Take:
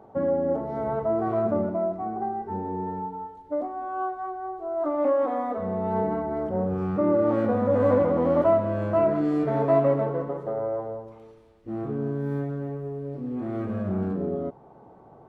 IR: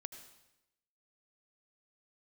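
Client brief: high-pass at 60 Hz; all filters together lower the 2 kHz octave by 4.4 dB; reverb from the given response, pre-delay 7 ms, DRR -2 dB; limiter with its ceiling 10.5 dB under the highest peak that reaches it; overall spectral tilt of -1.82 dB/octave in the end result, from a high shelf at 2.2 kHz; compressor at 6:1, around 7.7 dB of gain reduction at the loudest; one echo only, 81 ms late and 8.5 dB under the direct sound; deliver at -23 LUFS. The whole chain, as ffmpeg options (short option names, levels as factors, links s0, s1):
-filter_complex "[0:a]highpass=60,equalizer=f=2000:t=o:g=-3.5,highshelf=f=2200:g=-5.5,acompressor=threshold=0.0562:ratio=6,alimiter=level_in=1.5:limit=0.0631:level=0:latency=1,volume=0.668,aecho=1:1:81:0.376,asplit=2[s0][s1];[1:a]atrim=start_sample=2205,adelay=7[s2];[s1][s2]afir=irnorm=-1:irlink=0,volume=2[s3];[s0][s3]amix=inputs=2:normalize=0,volume=2.37"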